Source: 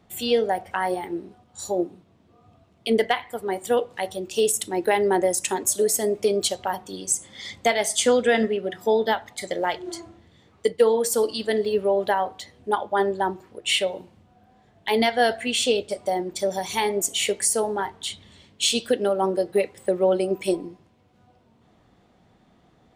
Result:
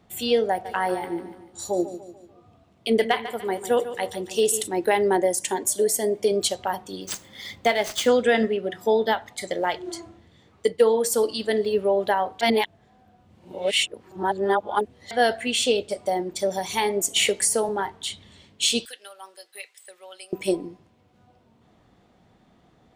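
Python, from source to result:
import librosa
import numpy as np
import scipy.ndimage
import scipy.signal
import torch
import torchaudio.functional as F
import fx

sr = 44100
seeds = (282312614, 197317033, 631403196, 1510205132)

y = fx.echo_feedback(x, sr, ms=146, feedback_pct=45, wet_db=-12.5, at=(0.64, 4.66), fade=0.02)
y = fx.notch_comb(y, sr, f0_hz=1300.0, at=(5.17, 6.32))
y = fx.median_filter(y, sr, points=5, at=(7.01, 8.09))
y = fx.band_squash(y, sr, depth_pct=70, at=(17.16, 17.69))
y = fx.bessel_highpass(y, sr, hz=3000.0, order=2, at=(18.85, 20.33))
y = fx.edit(y, sr, fx.reverse_span(start_s=12.41, length_s=2.7), tone=tone)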